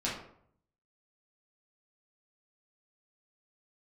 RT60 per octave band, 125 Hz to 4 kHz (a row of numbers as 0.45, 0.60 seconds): 0.90, 0.70, 0.65, 0.60, 0.50, 0.35 seconds